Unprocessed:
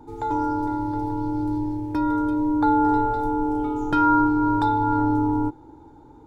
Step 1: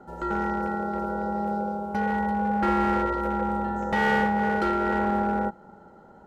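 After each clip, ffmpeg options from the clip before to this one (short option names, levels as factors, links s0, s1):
-af "aeval=exprs='clip(val(0),-1,0.112)':c=same,aeval=exprs='val(0)*sin(2*PI*510*n/s)':c=same"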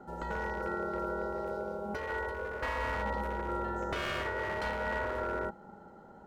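-af "afftfilt=real='re*lt(hypot(re,im),0.2)':imag='im*lt(hypot(re,im),0.2)':win_size=1024:overlap=0.75,volume=0.75"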